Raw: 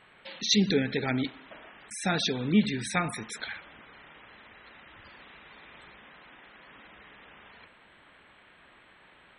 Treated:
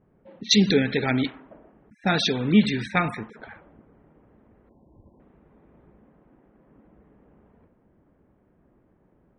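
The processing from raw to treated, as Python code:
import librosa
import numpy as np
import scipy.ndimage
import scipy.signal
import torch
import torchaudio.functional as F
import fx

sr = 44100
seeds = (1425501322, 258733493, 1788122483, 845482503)

y = fx.env_lowpass(x, sr, base_hz=310.0, full_db=-22.0)
y = fx.brickwall_lowpass(y, sr, high_hz=1100.0, at=(4.69, 5.2))
y = F.gain(torch.from_numpy(y), 5.5).numpy()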